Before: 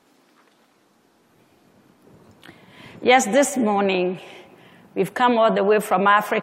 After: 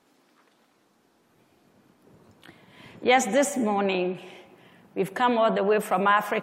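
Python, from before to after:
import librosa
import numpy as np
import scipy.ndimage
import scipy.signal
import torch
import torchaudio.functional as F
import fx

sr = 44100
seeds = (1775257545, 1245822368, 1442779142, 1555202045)

y = fx.rev_plate(x, sr, seeds[0], rt60_s=0.66, hf_ratio=0.55, predelay_ms=80, drr_db=18.0)
y = y * 10.0 ** (-5.0 / 20.0)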